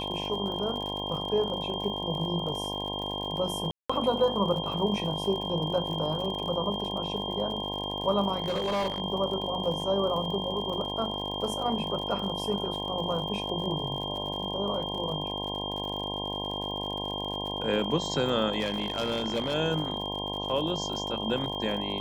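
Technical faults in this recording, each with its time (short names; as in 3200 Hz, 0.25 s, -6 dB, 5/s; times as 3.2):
buzz 50 Hz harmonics 21 -36 dBFS
crackle 62/s -36 dBFS
tone 3200 Hz -34 dBFS
3.71–3.9 gap 0.185 s
8.42–9 clipped -25 dBFS
18.59–19.55 clipped -24 dBFS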